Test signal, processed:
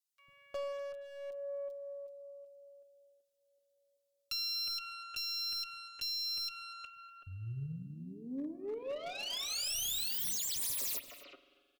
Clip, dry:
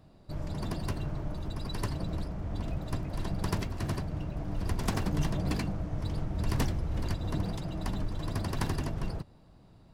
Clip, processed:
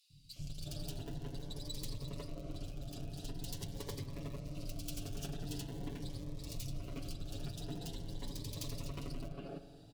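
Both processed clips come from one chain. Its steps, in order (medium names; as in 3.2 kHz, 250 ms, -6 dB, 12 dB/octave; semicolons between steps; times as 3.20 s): self-modulated delay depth 0.34 ms; three bands offset in time highs, lows, mids 100/360 ms, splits 180/2500 Hz; in parallel at -11 dB: Schmitt trigger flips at -29.5 dBFS; on the sum: compression 6:1, threshold -39 dBFS; tilt shelf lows -4.5 dB, about 670 Hz; comb 7.1 ms, depth 75%; spring tank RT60 2 s, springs 44 ms, chirp 35 ms, DRR 10 dB; Chebyshev shaper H 3 -18 dB, 6 -35 dB, 7 -35 dB, 8 -37 dB, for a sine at -25.5 dBFS; high-order bell 1.3 kHz -10.5 dB; on a send: delay 245 ms -21.5 dB; on the sum: hard clipper -40 dBFS; Shepard-style phaser rising 0.45 Hz; trim +7 dB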